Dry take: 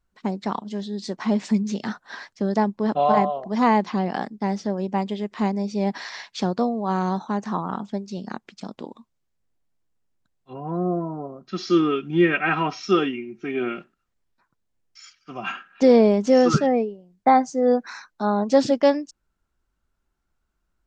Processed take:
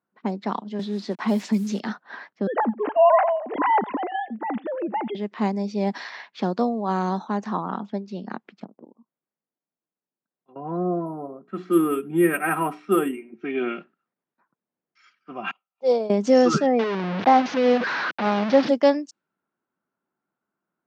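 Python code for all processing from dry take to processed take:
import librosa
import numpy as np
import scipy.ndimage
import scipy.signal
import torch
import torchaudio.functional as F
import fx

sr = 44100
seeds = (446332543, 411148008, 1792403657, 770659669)

y = fx.chain(x, sr, fx.quant_dither(seeds[0], bits=8, dither='none'),
    fx.band_squash(depth_pct=40), at=(0.79, 1.8))
y = fx.chain(y, sr, fx.sine_speech(),
    fx.echo_single(ms=86, db=-21.0), at=(2.47, 5.15))
y = fx.chain(y, sr, fx.env_lowpass_down(base_hz=620.0, full_db=-35.5),
    fx.low_shelf(hz=75.0, db=-9.0),
    fx.level_steps(step_db=17), at=(8.64, 10.56))
y = fx.chain(y, sr, fx.lowpass(hz=1800.0, slope=12),
    fx.hum_notches(base_hz=60, count=7),
    fx.resample_bad(factor=4, down='none', up='hold'), at=(11.06, 13.34))
y = fx.chain(y, sr, fx.fixed_phaser(hz=680.0, stages=4),
    fx.transient(attack_db=-2, sustain_db=-8),
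    fx.upward_expand(threshold_db=-29.0, expansion=2.5), at=(15.51, 16.1))
y = fx.chain(y, sr, fx.delta_mod(bps=32000, step_db=-18.5),
    fx.lowpass(hz=2800.0, slope=12), at=(16.79, 18.69))
y = scipy.signal.sosfilt(scipy.signal.butter(4, 170.0, 'highpass', fs=sr, output='sos'), y)
y = fx.env_lowpass(y, sr, base_hz=1600.0, full_db=-18.0)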